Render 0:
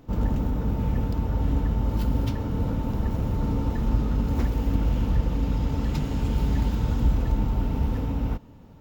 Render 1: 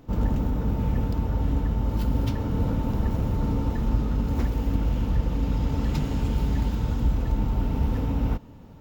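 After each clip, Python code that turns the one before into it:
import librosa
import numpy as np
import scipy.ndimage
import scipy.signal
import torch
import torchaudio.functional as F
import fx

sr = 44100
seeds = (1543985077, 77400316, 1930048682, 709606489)

y = fx.rider(x, sr, range_db=10, speed_s=0.5)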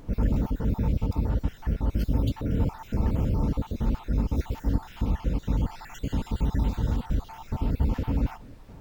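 y = fx.spec_dropout(x, sr, seeds[0], share_pct=45)
y = fx.dmg_noise_colour(y, sr, seeds[1], colour='brown', level_db=-46.0)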